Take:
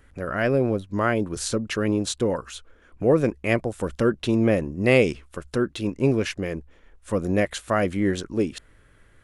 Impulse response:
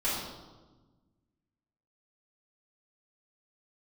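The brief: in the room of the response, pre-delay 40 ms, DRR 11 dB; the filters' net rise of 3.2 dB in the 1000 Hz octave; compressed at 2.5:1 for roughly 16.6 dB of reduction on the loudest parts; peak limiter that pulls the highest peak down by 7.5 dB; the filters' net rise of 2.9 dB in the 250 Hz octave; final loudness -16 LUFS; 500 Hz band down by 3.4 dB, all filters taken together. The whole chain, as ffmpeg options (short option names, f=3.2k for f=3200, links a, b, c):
-filter_complex "[0:a]equalizer=f=250:t=o:g=5.5,equalizer=f=500:t=o:g=-7.5,equalizer=f=1k:t=o:g=6.5,acompressor=threshold=-41dB:ratio=2.5,alimiter=level_in=6dB:limit=-24dB:level=0:latency=1,volume=-6dB,asplit=2[a][b];[1:a]atrim=start_sample=2205,adelay=40[c];[b][c]afir=irnorm=-1:irlink=0,volume=-20dB[d];[a][d]amix=inputs=2:normalize=0,volume=24dB"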